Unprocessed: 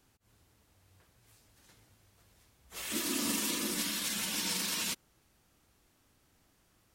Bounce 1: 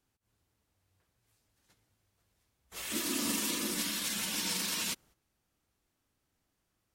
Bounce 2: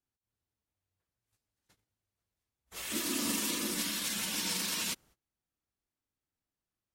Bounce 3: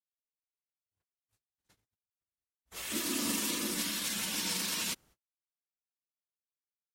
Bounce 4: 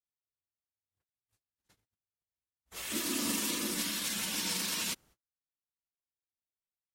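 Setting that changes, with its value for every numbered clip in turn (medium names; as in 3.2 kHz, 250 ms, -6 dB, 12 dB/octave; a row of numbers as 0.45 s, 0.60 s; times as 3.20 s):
gate, range: -11 dB, -24 dB, -59 dB, -41 dB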